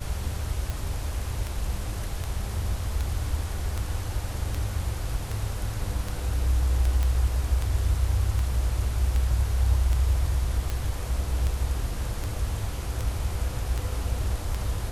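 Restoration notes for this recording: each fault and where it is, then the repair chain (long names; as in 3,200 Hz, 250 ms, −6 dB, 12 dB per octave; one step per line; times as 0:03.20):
scratch tick 78 rpm −16 dBFS
0:07.03: click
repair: click removal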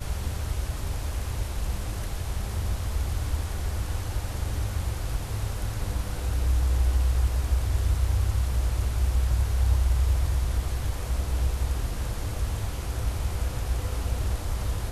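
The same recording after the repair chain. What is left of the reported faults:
none of them is left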